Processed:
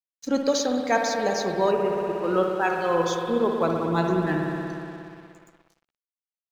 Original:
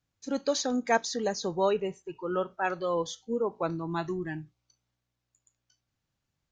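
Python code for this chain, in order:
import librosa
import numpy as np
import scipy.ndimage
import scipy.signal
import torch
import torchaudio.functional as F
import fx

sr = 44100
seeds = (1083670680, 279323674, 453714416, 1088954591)

y = fx.rev_spring(x, sr, rt60_s=3.0, pass_ms=(59,), chirp_ms=45, drr_db=1.0)
y = fx.rider(y, sr, range_db=4, speed_s=0.5)
y = fx.lowpass(y, sr, hz=2100.0, slope=12, at=(1.71, 2.24))
y = np.sign(y) * np.maximum(np.abs(y) - 10.0 ** (-52.0 / 20.0), 0.0)
y = y * 10.0 ** (5.0 / 20.0)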